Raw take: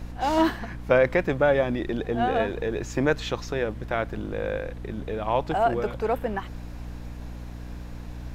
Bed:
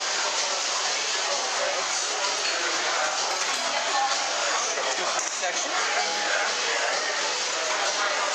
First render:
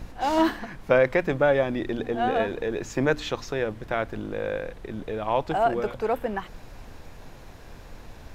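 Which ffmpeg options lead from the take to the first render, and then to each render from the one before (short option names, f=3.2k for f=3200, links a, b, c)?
-af "bandreject=f=60:t=h:w=4,bandreject=f=120:t=h:w=4,bandreject=f=180:t=h:w=4,bandreject=f=240:t=h:w=4,bandreject=f=300:t=h:w=4"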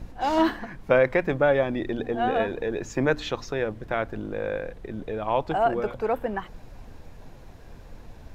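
-af "afftdn=nr=6:nf=-45"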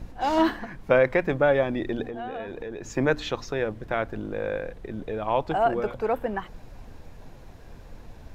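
-filter_complex "[0:a]asettb=1/sr,asplit=3[a][b][c];[a]atrim=end=2.044[d];[b]atrim=start=2.04:end=2.86,asetpts=PTS-STARTPTS,afade=t=in:d=0.004:c=qsin,afade=t=out:st=0.816:d=0.004:c=qsin,acompressor=threshold=-32dB:ratio=4:attack=3.2:release=140:knee=1:detection=peak[e];[c]atrim=start=2.856[f];[d][e]acrossfade=d=0.004:c1=hsin:c2=qsin[g];[g][f]acrossfade=d=0.004:c1=qsin:c2=hsin"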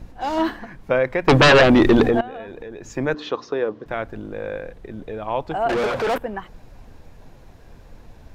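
-filter_complex "[0:a]asettb=1/sr,asplit=3[a][b][c];[a]atrim=end=1.284[d];[b]atrim=start=1.28:end=2.21,asetpts=PTS-STARTPTS,afade=t=in:d=0.004:c=qsin,afade=t=out:st=0.926:d=0.004:c=qsin,aeval=exprs='0.398*sin(PI/2*5.01*val(0)/0.398)':c=same[e];[c]atrim=start=2.206[f];[d][e]acrossfade=d=0.004:c1=hsin:c2=qsin[g];[g][f]acrossfade=d=0.004:c1=qsin:c2=hsin,asettb=1/sr,asplit=3[h][i][j];[h]atrim=end=3.144[k];[i]atrim=start=3.14:end=3.86,asetpts=PTS-STARTPTS,afade=t=in:d=0.004:c=qsin,afade=t=out:st=0.716:d=0.004:c=qsin,highpass=190,equalizer=f=290:t=q:w=4:g=6,equalizer=f=440:t=q:w=4:g=8,equalizer=f=1.1k:t=q:w=4:g=8,equalizer=f=2.2k:t=q:w=4:g=-5,lowpass=f=5.6k:w=0.5412,lowpass=f=5.6k:w=1.3066[l];[j]atrim=start=3.856[m];[k][l]acrossfade=d=0.004:c1=hsin:c2=qsin[n];[n][m]acrossfade=d=0.004:c1=qsin:c2=hsin,asettb=1/sr,asplit=3[o][p][q];[o]atrim=end=5.694[r];[p]atrim=start=5.69:end=6.18,asetpts=PTS-STARTPTS,afade=t=in:d=0.004:c=qsin,afade=t=out:st=0.486:d=0.004:c=qsin,asplit=2[s][t];[t]highpass=f=720:p=1,volume=32dB,asoftclip=type=tanh:threshold=-15dB[u];[s][u]amix=inputs=2:normalize=0,lowpass=f=3.2k:p=1,volume=-6dB[v];[q]atrim=start=6.176[w];[r][v]acrossfade=d=0.004:c1=hsin:c2=qsin[x];[x][w]acrossfade=d=0.004:c1=qsin:c2=hsin"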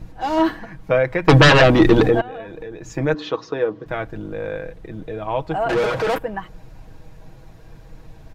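-af "equalizer=f=97:t=o:w=1.1:g=6,aecho=1:1:6.3:0.54"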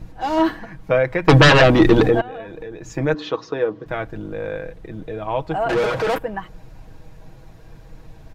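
-af anull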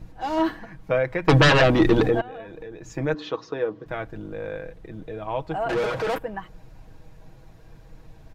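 -af "volume=-5dB"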